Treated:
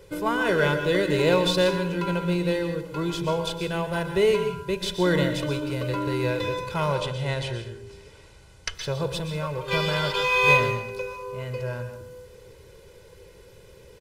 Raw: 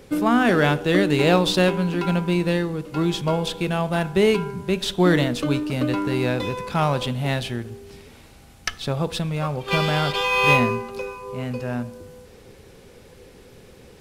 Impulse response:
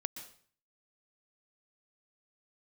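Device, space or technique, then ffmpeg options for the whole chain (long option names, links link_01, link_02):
microphone above a desk: -filter_complex "[0:a]asettb=1/sr,asplit=3[link_01][link_02][link_03];[link_01]atrim=end=6.954[link_04];[link_02]atrim=start=6.95:end=8.75,asetpts=PTS-STARTPTS,afade=type=in:duration=0.004:curve=qsin,afade=type=out:start_time=1.796:duration=0.004:curve=qsin,lowpass=frequency=9800:width=0.5412,lowpass=frequency=9800:width=1.3066[link_05];[link_03]atrim=start=8.746[link_06];[link_04][link_05]acrossfade=duration=0.004:curve1=hsin:curve2=qsin[link_07];[link_07][link_06]acrossfade=duration=0.004:curve1=qsin:curve2=hsin,aecho=1:1:2:0.79[link_08];[1:a]atrim=start_sample=2205[link_09];[link_08][link_09]afir=irnorm=-1:irlink=0,volume=-4.5dB"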